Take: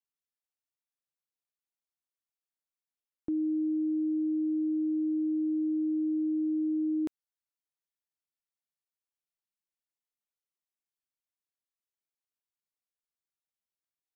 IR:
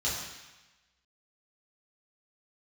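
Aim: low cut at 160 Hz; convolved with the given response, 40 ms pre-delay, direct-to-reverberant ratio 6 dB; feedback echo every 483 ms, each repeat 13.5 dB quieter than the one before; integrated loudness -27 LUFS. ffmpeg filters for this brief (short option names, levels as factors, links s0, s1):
-filter_complex "[0:a]highpass=160,aecho=1:1:483|966:0.211|0.0444,asplit=2[s0][s1];[1:a]atrim=start_sample=2205,adelay=40[s2];[s1][s2]afir=irnorm=-1:irlink=0,volume=0.211[s3];[s0][s3]amix=inputs=2:normalize=0,volume=2"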